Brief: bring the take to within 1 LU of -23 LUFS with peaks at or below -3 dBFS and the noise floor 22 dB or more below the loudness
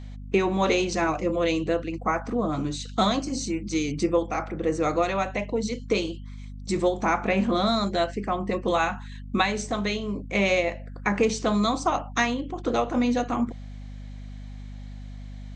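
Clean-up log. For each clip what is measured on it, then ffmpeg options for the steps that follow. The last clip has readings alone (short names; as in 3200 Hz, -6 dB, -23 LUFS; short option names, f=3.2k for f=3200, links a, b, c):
hum 50 Hz; harmonics up to 250 Hz; hum level -36 dBFS; loudness -26.0 LUFS; peak -9.0 dBFS; loudness target -23.0 LUFS
-> -af "bandreject=f=50:t=h:w=4,bandreject=f=100:t=h:w=4,bandreject=f=150:t=h:w=4,bandreject=f=200:t=h:w=4,bandreject=f=250:t=h:w=4"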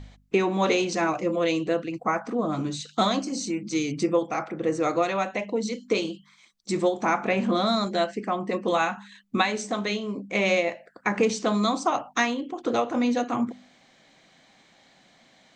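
hum none; loudness -26.0 LUFS; peak -8.5 dBFS; loudness target -23.0 LUFS
-> -af "volume=3dB"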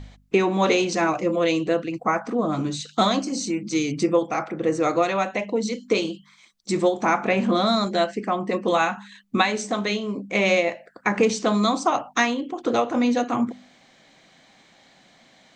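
loudness -23.0 LUFS; peak -5.5 dBFS; noise floor -56 dBFS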